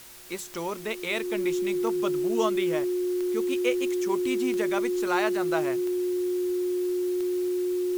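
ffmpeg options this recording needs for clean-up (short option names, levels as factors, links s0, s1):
-af "adeclick=t=4,bandreject=f=360:w=30,afwtdn=0.0045"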